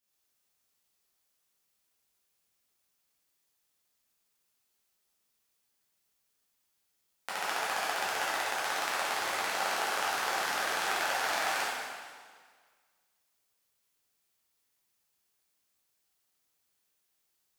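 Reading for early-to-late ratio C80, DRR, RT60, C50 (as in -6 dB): 0.0 dB, -9.5 dB, 1.7 s, -2.5 dB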